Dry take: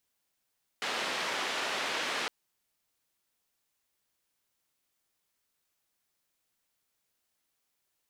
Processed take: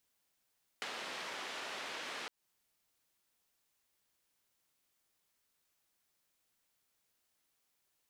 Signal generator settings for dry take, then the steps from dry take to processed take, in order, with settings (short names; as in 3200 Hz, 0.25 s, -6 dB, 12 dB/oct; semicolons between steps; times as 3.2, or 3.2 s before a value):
noise band 310–3100 Hz, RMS -33.5 dBFS 1.46 s
compressor 12:1, threshold -40 dBFS